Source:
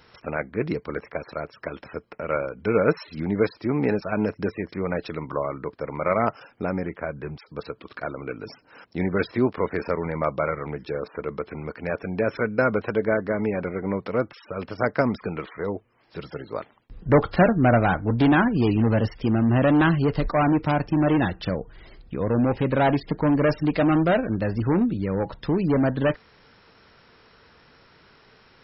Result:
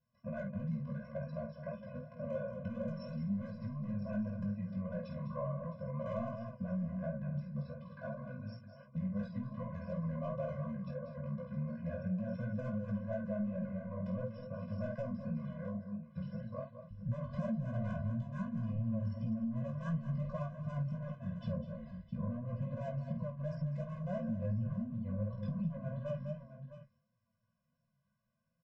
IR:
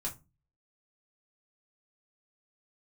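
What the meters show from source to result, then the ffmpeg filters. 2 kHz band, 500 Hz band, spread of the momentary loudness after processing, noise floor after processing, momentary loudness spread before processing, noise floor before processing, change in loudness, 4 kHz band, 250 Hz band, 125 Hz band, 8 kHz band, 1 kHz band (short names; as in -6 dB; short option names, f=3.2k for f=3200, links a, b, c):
-25.0 dB, -18.5 dB, 7 LU, -80 dBFS, 16 LU, -56 dBFS, -15.5 dB, under -20 dB, -15.0 dB, -10.5 dB, n/a, -23.0 dB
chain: -filter_complex "[0:a]equalizer=f=4.4k:w=0.84:g=2.5,asplit=2[a][b];[b]adelay=49,volume=-6.5dB[c];[a][c]amix=inputs=2:normalize=0,aresample=16000,asoftclip=type=tanh:threshold=-20dB,aresample=44100,agate=range=-20dB:threshold=-46dB:ratio=16:detection=peak,flanger=delay=7.3:depth=8.2:regen=39:speed=0.48:shape=triangular,equalizer=f=125:t=o:w=1:g=9,equalizer=f=250:t=o:w=1:g=11,equalizer=f=1k:t=o:w=1:g=3,equalizer=f=2k:t=o:w=1:g=-8,equalizer=f=4k:t=o:w=1:g=-11,alimiter=limit=-14dB:level=0:latency=1:release=73,bandreject=f=4.6k:w=13,asplit=2[d][e];[e]aecho=0:1:203|663:0.282|0.15[f];[d][f]amix=inputs=2:normalize=0,flanger=delay=17.5:depth=3.7:speed=2.8,acompressor=threshold=-29dB:ratio=4,afftfilt=real='re*eq(mod(floor(b*sr/1024/240),2),0)':imag='im*eq(mod(floor(b*sr/1024/240),2),0)':win_size=1024:overlap=0.75,volume=-3.5dB"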